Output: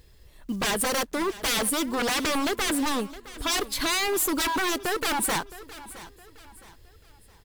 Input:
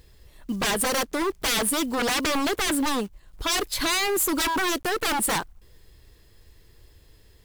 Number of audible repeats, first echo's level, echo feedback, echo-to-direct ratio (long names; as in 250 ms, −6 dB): 3, −17.0 dB, 38%, −16.5 dB